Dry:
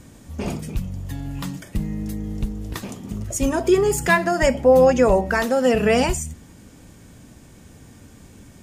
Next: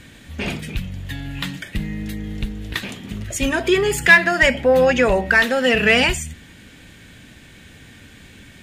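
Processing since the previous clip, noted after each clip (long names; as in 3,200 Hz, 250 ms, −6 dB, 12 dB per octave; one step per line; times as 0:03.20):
flat-topped bell 2,500 Hz +12.5 dB
in parallel at −5 dB: soft clipping −12.5 dBFS, distortion −9 dB
on the sum: level −4 dB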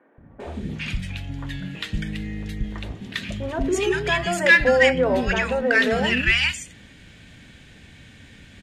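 high-frequency loss of the air 51 metres
three-band delay without the direct sound mids, lows, highs 180/400 ms, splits 350/1,200 Hz
level −1.5 dB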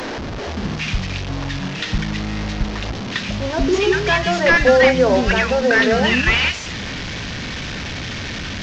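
linear delta modulator 32 kbit/s, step −26.5 dBFS
level +5.5 dB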